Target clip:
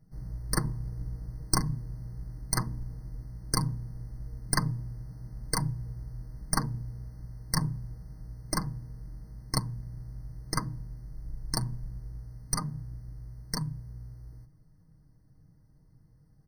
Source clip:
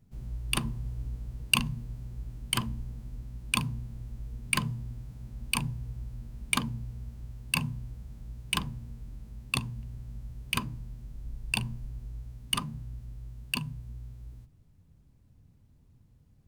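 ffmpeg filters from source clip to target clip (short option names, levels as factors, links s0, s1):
-af "aeval=exprs='0.631*(cos(1*acos(clip(val(0)/0.631,-1,1)))-cos(1*PI/2))+0.126*(cos(6*acos(clip(val(0)/0.631,-1,1)))-cos(6*PI/2))':c=same,aecho=1:1:6.4:0.61,afftfilt=real='re*eq(mod(floor(b*sr/1024/2100),2),0)':imag='im*eq(mod(floor(b*sr/1024/2100),2),0)':win_size=1024:overlap=0.75"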